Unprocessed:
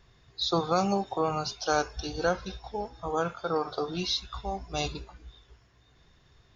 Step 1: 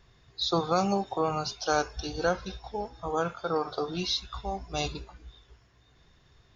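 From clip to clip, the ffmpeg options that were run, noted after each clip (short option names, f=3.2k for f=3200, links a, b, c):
-af anull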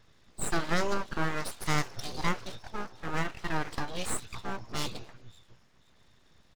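-filter_complex "[0:a]asplit=2[a][b];[b]adelay=227.4,volume=-25dB,highshelf=f=4k:g=-5.12[c];[a][c]amix=inputs=2:normalize=0,aeval=exprs='abs(val(0))':c=same"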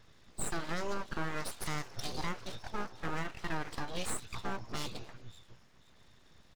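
-af "alimiter=level_in=0.5dB:limit=-24dB:level=0:latency=1:release=320,volume=-0.5dB,volume=1dB"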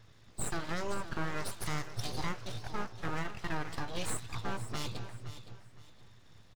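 -af "equalizer=f=110:t=o:w=0.41:g=10.5,aecho=1:1:516|1032|1548:0.224|0.0627|0.0176"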